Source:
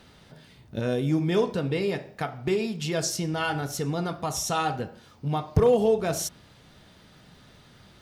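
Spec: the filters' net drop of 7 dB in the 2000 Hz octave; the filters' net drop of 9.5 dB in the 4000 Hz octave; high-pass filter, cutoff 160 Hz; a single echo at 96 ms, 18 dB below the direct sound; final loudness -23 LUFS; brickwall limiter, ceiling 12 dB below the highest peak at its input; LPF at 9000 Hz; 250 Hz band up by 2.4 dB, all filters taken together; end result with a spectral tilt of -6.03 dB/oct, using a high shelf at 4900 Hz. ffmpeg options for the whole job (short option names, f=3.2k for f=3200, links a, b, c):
-af "highpass=160,lowpass=9k,equalizer=f=250:t=o:g=5,equalizer=f=2k:t=o:g=-8,equalizer=f=4k:t=o:g=-8.5,highshelf=f=4.9k:g=-4.5,alimiter=limit=-22.5dB:level=0:latency=1,aecho=1:1:96:0.126,volume=9dB"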